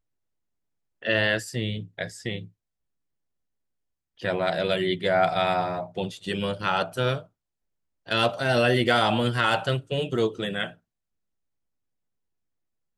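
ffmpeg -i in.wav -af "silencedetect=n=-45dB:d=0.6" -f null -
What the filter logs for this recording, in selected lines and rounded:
silence_start: 0.00
silence_end: 1.02 | silence_duration: 1.02
silence_start: 2.48
silence_end: 4.19 | silence_duration: 1.72
silence_start: 7.25
silence_end: 8.07 | silence_duration: 0.82
silence_start: 10.74
silence_end: 12.97 | silence_duration: 2.24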